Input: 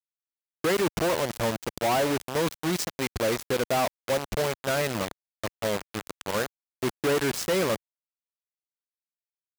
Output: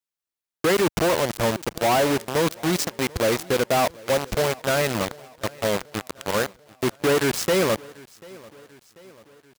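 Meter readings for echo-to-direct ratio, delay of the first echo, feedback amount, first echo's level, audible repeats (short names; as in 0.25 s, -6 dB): -21.5 dB, 0.74 s, 55%, -23.0 dB, 3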